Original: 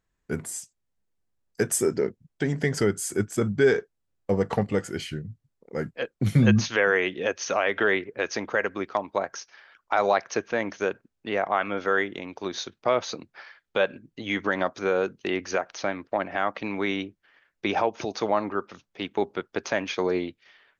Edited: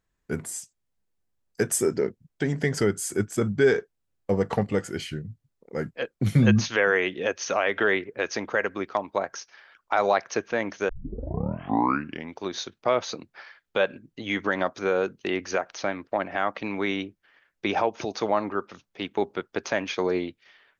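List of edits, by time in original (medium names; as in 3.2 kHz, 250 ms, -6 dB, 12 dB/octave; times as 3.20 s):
10.89 s: tape start 1.51 s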